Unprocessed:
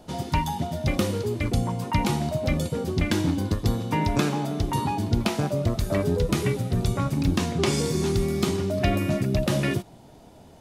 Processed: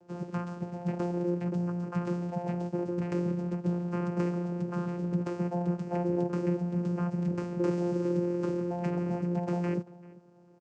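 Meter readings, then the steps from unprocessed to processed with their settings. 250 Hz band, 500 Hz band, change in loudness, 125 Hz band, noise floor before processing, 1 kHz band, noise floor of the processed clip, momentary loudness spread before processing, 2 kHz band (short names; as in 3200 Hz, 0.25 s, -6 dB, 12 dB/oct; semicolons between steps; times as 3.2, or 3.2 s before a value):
-4.0 dB, -5.5 dB, -6.5 dB, -7.5 dB, -49 dBFS, -10.0 dB, -53 dBFS, 3 LU, -14.0 dB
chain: tracing distortion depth 0.34 ms; in parallel at -10.5 dB: Schmitt trigger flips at -29.5 dBFS; on the sum: fixed phaser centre 780 Hz, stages 6; outdoor echo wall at 67 m, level -21 dB; vocoder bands 8, saw 175 Hz; gain -1.5 dB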